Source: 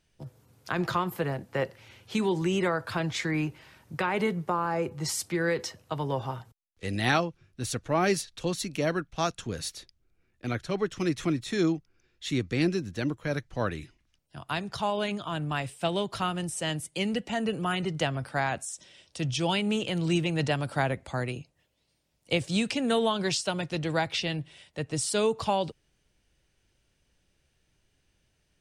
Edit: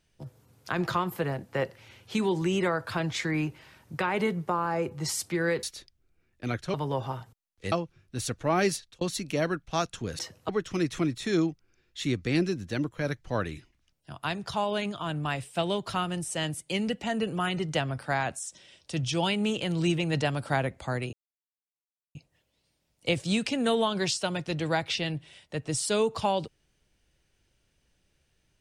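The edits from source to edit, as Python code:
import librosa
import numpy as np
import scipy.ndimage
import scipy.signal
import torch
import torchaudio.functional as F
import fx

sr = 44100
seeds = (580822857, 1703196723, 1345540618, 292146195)

y = fx.edit(x, sr, fx.swap(start_s=5.63, length_s=0.3, other_s=9.64, other_length_s=1.11),
    fx.cut(start_s=6.91, length_s=0.26),
    fx.fade_out_span(start_s=8.21, length_s=0.25),
    fx.insert_silence(at_s=21.39, length_s=1.02), tone=tone)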